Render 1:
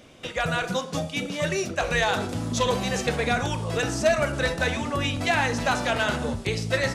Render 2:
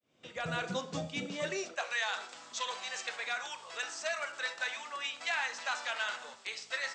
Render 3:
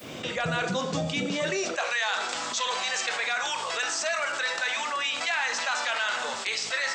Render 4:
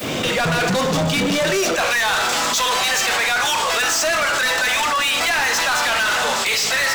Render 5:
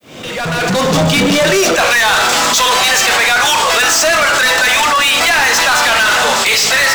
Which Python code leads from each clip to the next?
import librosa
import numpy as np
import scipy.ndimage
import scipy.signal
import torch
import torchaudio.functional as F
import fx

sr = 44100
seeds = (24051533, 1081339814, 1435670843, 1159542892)

y1 = fx.fade_in_head(x, sr, length_s=0.57)
y1 = scipy.signal.sosfilt(scipy.signal.ellip(4, 1.0, 40, 8000.0, 'lowpass', fs=sr, output='sos'), y1)
y1 = fx.filter_sweep_highpass(y1, sr, from_hz=130.0, to_hz=1100.0, start_s=1.23, end_s=1.92, q=0.88)
y1 = F.gain(torch.from_numpy(y1), -8.0).numpy()
y2 = fx.env_flatten(y1, sr, amount_pct=70)
y2 = F.gain(torch.from_numpy(y2), 5.0).numpy()
y3 = fx.leveller(y2, sr, passes=5)
y3 = F.gain(torch.from_numpy(y3), -1.5).numpy()
y4 = fx.fade_in_head(y3, sr, length_s=0.99)
y4 = F.gain(torch.from_numpy(y4), 7.5).numpy()